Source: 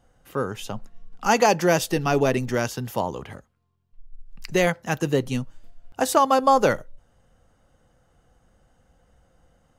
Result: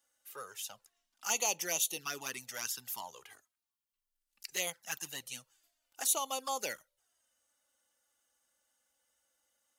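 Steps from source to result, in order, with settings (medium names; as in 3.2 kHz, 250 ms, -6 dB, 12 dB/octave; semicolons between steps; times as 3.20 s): differentiator; touch-sensitive flanger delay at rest 3.5 ms, full sweep at -30.5 dBFS; trim +2.5 dB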